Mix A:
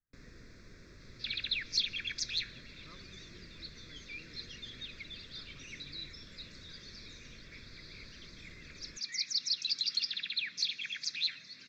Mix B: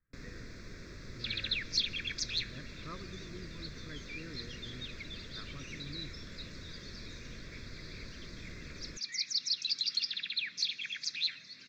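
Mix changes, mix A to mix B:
speech +11.5 dB; first sound +7.0 dB

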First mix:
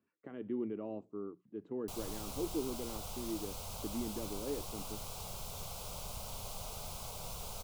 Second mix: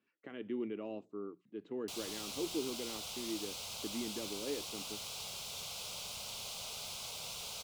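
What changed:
background -3.5 dB; master: add weighting filter D

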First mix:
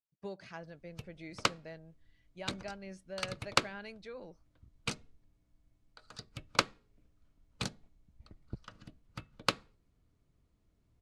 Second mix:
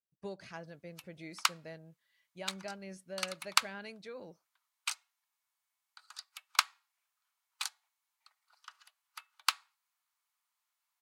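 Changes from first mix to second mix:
background: add steep high-pass 840 Hz 48 dB/oct; master: remove air absorption 56 m

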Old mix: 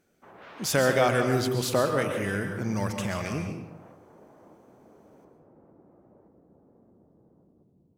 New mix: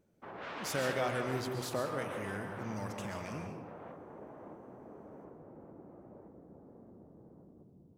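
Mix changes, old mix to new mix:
speech -11.5 dB; background +4.0 dB

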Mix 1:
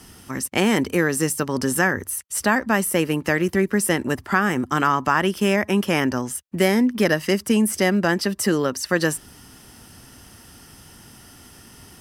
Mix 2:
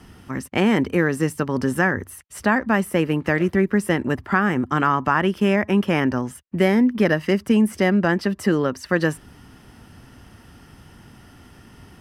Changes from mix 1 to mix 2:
background +10.5 dB; master: add tone controls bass +3 dB, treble -13 dB

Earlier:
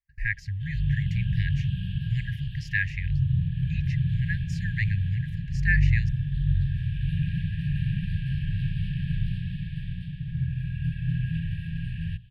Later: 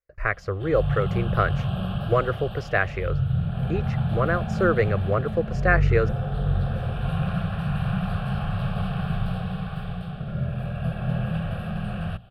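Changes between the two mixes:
background: remove LPF 2600 Hz 6 dB/oct; master: remove brick-wall FIR band-stop 180–1600 Hz

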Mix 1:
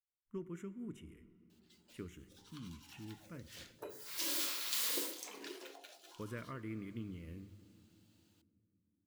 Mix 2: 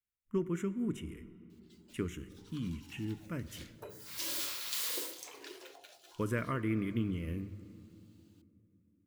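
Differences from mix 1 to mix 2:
speech +11.0 dB; background: add HPF 320 Hz 24 dB/oct

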